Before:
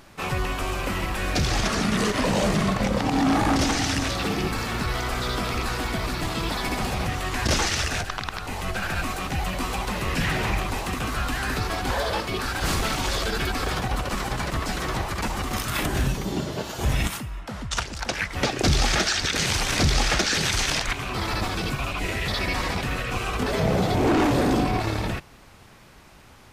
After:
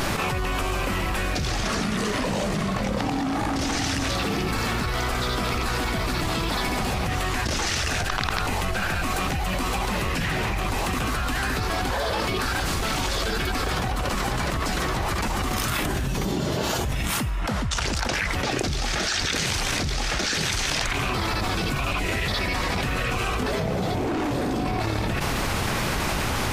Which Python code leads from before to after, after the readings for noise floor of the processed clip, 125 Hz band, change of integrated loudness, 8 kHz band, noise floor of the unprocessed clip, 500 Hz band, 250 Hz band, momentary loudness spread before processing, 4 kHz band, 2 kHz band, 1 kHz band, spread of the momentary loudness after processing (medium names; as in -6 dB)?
-26 dBFS, 0.0 dB, 0.0 dB, 0.0 dB, -49 dBFS, -0.5 dB, -1.5 dB, 7 LU, 0.0 dB, +0.5 dB, +0.5 dB, 2 LU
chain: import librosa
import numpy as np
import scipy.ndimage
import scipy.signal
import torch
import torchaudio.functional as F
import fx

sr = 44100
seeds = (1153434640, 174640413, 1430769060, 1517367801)

y = fx.env_flatten(x, sr, amount_pct=100)
y = y * 10.0 ** (-8.0 / 20.0)